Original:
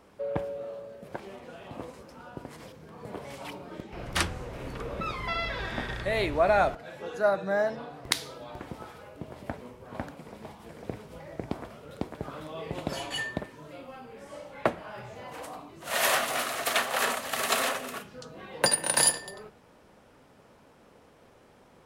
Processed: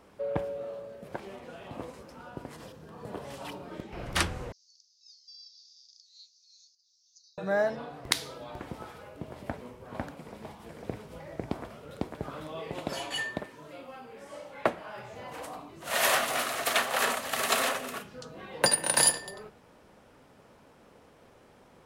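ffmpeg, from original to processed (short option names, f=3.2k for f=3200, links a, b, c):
-filter_complex "[0:a]asettb=1/sr,asplit=3[a][b][c];[a]atrim=end=2.544[d];[b]atrim=start=2.54:end=3.63,asetpts=PTS-STARTPTS,afade=t=in:d=0.004:c=qsin,afade=t=out:st=1.086:d=0.004:c=qsin,bandreject=f=2.2k:w=7.3[e];[c]atrim=start=3.626[f];[d][e]acrossfade=d=0.004:c1=hsin:c2=qsin[g];[g][f]acrossfade=d=0.004:c1=qsin:c2=hsin,asettb=1/sr,asplit=3[h][i][j];[h]atrim=end=4.524[k];[i]atrim=start=4.52:end=7.38,asetpts=PTS-STARTPTS,afade=t=in:d=0.004:c=qsin,afade=t=out:st=2.856:d=0.004:c=qsin,asuperpass=centerf=5400:order=8:qfactor=2.6[l];[j]atrim=start=7.376[m];[k][l]acrossfade=d=0.004:c1=hsin:c2=qsin[n];[n][m]acrossfade=d=0.004:c1=qsin:c2=hsin,asettb=1/sr,asplit=3[o][p][q];[o]atrim=end=12.594[r];[p]atrim=start=12.59:end=15.14,asetpts=PTS-STARTPTS,afade=t=in:d=0.004:c=qsin,afade=t=out:st=2.546:d=0.004:c=qsin,lowshelf=f=160:g=-8.5[s];[q]atrim=start=15.136[t];[r][s]acrossfade=d=0.004:c1=hsin:c2=qsin[u];[u][t]acrossfade=d=0.004:c1=qsin:c2=hsin"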